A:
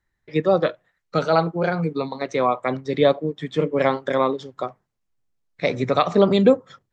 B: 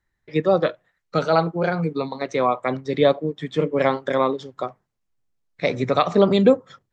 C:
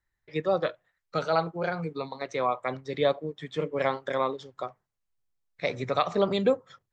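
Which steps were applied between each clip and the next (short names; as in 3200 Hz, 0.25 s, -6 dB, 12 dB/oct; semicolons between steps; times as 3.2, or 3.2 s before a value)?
nothing audible
bell 240 Hz -6.5 dB 1.6 oct; gain -5.5 dB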